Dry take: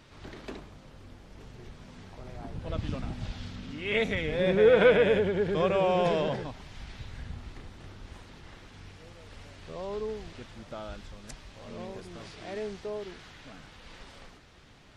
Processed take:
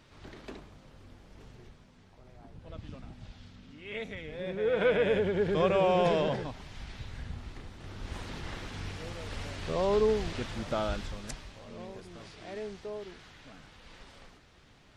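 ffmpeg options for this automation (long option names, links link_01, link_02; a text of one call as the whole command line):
ffmpeg -i in.wav -af "volume=16.5dB,afade=type=out:start_time=1.5:duration=0.4:silence=0.421697,afade=type=in:start_time=4.59:duration=0.9:silence=0.281838,afade=type=in:start_time=7.81:duration=0.49:silence=0.354813,afade=type=out:start_time=10.82:duration=0.84:silence=0.237137" out.wav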